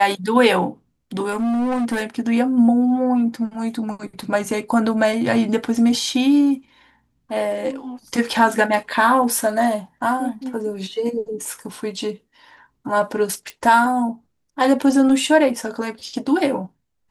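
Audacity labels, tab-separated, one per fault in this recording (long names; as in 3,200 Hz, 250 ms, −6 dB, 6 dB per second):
1.300000	2.030000	clipping −18 dBFS
13.500000	13.500000	click −17 dBFS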